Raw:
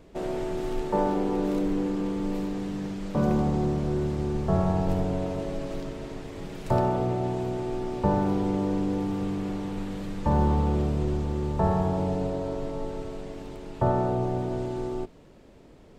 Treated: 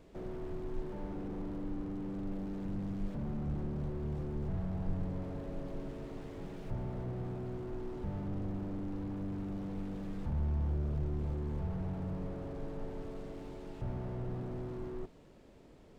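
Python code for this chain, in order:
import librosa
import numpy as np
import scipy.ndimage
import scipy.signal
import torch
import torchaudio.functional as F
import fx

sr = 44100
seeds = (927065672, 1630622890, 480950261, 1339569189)

y = fx.low_shelf(x, sr, hz=160.0, db=9.0, at=(2.65, 3.08))
y = fx.slew_limit(y, sr, full_power_hz=6.4)
y = y * librosa.db_to_amplitude(-6.0)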